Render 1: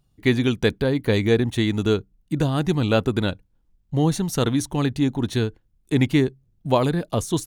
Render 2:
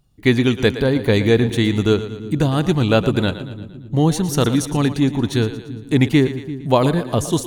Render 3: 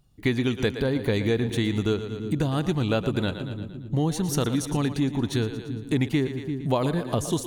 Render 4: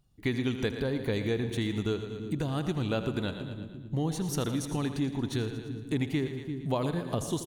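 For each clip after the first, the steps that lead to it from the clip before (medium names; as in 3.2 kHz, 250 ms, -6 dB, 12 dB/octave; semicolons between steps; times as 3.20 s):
two-band feedback delay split 310 Hz, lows 338 ms, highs 115 ms, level -12.5 dB; trim +4 dB
compression 2.5:1, threshold -22 dBFS, peak gain reduction 9 dB; trim -1.5 dB
feedback delay 81 ms, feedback 57%, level -13.5 dB; trim -6 dB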